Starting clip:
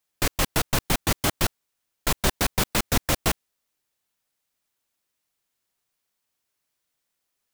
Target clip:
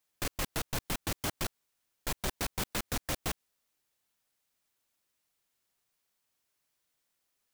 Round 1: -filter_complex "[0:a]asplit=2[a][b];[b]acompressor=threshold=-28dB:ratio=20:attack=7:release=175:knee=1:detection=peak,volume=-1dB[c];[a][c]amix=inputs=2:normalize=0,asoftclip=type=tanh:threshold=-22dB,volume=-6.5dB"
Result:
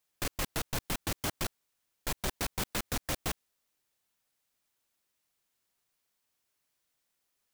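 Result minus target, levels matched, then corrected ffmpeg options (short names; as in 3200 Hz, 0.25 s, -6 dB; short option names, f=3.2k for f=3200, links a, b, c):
compressor: peak gain reduction -6 dB
-filter_complex "[0:a]asplit=2[a][b];[b]acompressor=threshold=-34.5dB:ratio=20:attack=7:release=175:knee=1:detection=peak,volume=-1dB[c];[a][c]amix=inputs=2:normalize=0,asoftclip=type=tanh:threshold=-22dB,volume=-6.5dB"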